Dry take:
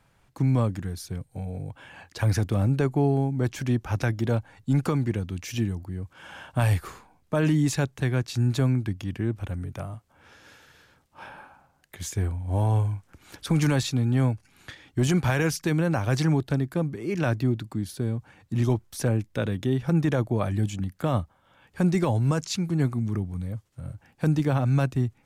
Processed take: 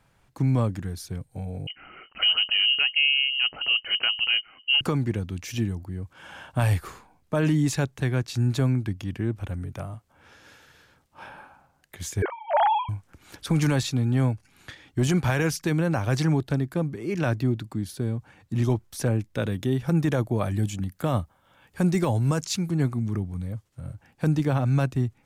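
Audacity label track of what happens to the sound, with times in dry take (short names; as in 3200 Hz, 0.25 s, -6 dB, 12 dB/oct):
1.670000	4.810000	inverted band carrier 3000 Hz
12.220000	12.890000	sine-wave speech
19.380000	22.710000	high shelf 8800 Hz +8 dB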